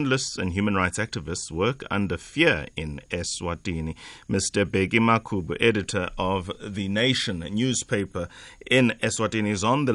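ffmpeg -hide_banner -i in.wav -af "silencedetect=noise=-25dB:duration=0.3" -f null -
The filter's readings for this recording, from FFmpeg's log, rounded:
silence_start: 3.91
silence_end: 4.30 | silence_duration: 0.39
silence_start: 8.24
silence_end: 8.67 | silence_duration: 0.42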